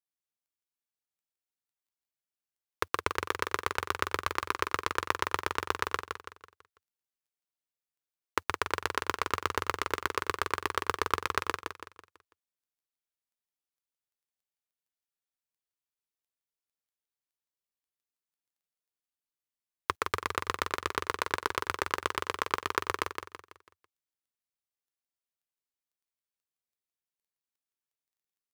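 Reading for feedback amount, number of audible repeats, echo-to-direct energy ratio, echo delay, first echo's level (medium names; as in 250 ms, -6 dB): 40%, 4, -5.5 dB, 165 ms, -6.0 dB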